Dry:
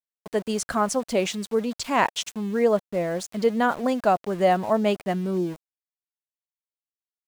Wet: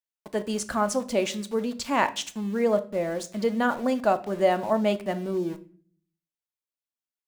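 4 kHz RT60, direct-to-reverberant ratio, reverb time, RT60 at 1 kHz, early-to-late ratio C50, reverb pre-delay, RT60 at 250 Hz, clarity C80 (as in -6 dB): 0.35 s, 9.0 dB, 0.45 s, 0.40 s, 16.5 dB, 3 ms, 0.70 s, 21.5 dB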